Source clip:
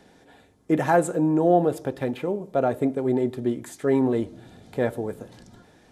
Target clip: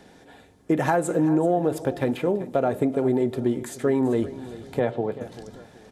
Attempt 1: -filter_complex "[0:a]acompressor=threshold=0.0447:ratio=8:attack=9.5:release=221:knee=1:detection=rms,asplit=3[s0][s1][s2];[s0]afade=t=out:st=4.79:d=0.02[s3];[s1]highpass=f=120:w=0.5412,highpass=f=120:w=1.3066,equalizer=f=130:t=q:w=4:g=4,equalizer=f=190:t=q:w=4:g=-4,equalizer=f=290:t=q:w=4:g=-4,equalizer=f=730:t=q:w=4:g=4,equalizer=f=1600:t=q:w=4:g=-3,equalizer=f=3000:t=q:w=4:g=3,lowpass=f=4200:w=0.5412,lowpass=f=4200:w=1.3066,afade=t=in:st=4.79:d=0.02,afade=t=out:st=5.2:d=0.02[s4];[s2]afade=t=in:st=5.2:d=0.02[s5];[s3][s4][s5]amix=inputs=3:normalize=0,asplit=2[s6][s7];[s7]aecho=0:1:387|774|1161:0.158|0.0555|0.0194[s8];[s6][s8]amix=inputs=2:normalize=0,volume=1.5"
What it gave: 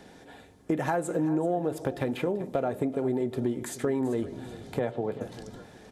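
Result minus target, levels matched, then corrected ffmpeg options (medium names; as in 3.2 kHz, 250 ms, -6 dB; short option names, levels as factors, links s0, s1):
compression: peak gain reduction +6 dB
-filter_complex "[0:a]acompressor=threshold=0.1:ratio=8:attack=9.5:release=221:knee=1:detection=rms,asplit=3[s0][s1][s2];[s0]afade=t=out:st=4.79:d=0.02[s3];[s1]highpass=f=120:w=0.5412,highpass=f=120:w=1.3066,equalizer=f=130:t=q:w=4:g=4,equalizer=f=190:t=q:w=4:g=-4,equalizer=f=290:t=q:w=4:g=-4,equalizer=f=730:t=q:w=4:g=4,equalizer=f=1600:t=q:w=4:g=-3,equalizer=f=3000:t=q:w=4:g=3,lowpass=f=4200:w=0.5412,lowpass=f=4200:w=1.3066,afade=t=in:st=4.79:d=0.02,afade=t=out:st=5.2:d=0.02[s4];[s2]afade=t=in:st=5.2:d=0.02[s5];[s3][s4][s5]amix=inputs=3:normalize=0,asplit=2[s6][s7];[s7]aecho=0:1:387|774|1161:0.158|0.0555|0.0194[s8];[s6][s8]amix=inputs=2:normalize=0,volume=1.5"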